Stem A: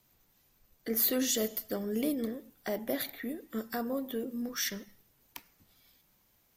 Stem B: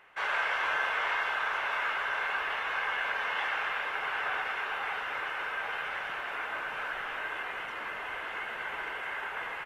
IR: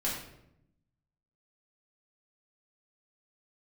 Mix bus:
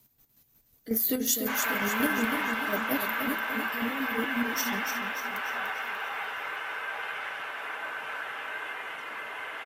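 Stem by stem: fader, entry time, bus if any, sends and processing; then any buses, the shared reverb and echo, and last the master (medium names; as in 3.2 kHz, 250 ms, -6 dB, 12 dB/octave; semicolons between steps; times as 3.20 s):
+1.5 dB, 0.00 s, no send, echo send -6.5 dB, peaking EQ 170 Hz +6.5 dB 1.8 oct; square tremolo 5.5 Hz, depth 65%, duty 35%
+0.5 dB, 1.30 s, no send, no echo send, high-pass 130 Hz 12 dB/octave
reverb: none
echo: feedback delay 294 ms, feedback 49%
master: treble shelf 7.6 kHz +10.5 dB; comb of notches 180 Hz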